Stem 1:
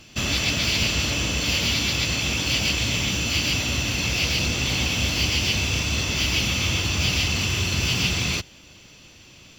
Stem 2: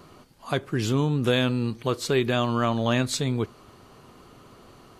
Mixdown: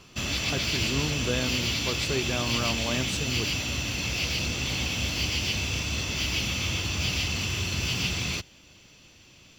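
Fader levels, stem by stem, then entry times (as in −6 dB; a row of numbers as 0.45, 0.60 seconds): −5.5, −7.5 decibels; 0.00, 0.00 seconds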